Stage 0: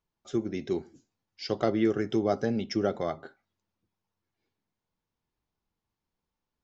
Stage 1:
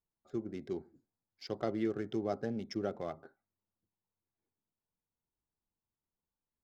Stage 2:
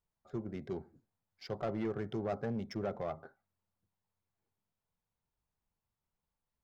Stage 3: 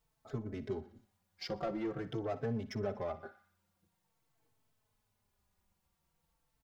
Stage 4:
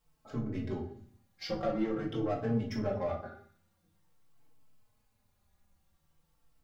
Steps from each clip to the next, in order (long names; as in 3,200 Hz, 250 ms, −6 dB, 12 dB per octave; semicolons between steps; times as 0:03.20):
adaptive Wiener filter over 15 samples; level −8.5 dB
parametric band 310 Hz −9.5 dB 1 octave; soft clipping −35.5 dBFS, distortion −12 dB; high-shelf EQ 2,600 Hz −11.5 dB; level +7 dB
feedback echo with a high-pass in the loop 60 ms, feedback 62%, high-pass 900 Hz, level −16.5 dB; downward compressor 2 to 1, threshold −52 dBFS, peak gain reduction 11 dB; barber-pole flanger 4 ms −0.46 Hz; level +12.5 dB
rectangular room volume 320 cubic metres, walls furnished, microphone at 2.2 metres